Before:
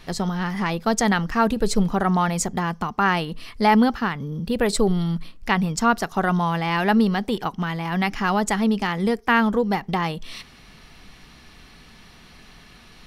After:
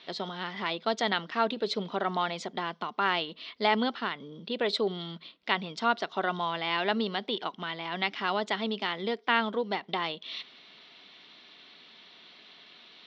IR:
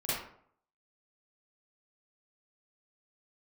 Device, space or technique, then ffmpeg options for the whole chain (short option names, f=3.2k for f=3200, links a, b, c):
phone earpiece: -af "highpass=460,equalizer=f=490:t=q:w=4:g=-5,equalizer=f=820:t=q:w=4:g=-9,equalizer=f=1.2k:t=q:w=4:g=-7,equalizer=f=1.7k:t=q:w=4:g=-8,equalizer=f=2.5k:t=q:w=4:g=-4,equalizer=f=3.6k:t=q:w=4:g=7,lowpass=f=3.9k:w=0.5412,lowpass=f=3.9k:w=1.3066,lowshelf=f=79:g=-9.5"